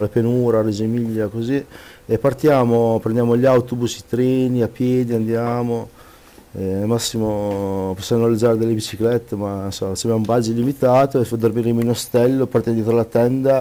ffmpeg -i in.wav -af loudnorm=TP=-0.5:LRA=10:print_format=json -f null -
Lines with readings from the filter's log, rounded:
"input_i" : "-18.3",
"input_tp" : "-7.1",
"input_lra" : "3.3",
"input_thresh" : "-28.5",